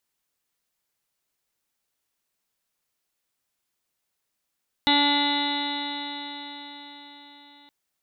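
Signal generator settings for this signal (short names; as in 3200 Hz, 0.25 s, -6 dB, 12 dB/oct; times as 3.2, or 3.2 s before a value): stretched partials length 2.82 s, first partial 287 Hz, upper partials -12/1/-14.5/-9.5/-18/-3/-16/-19/-6.5/-17/-1/0/-8 dB, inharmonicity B 0.00035, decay 4.91 s, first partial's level -23 dB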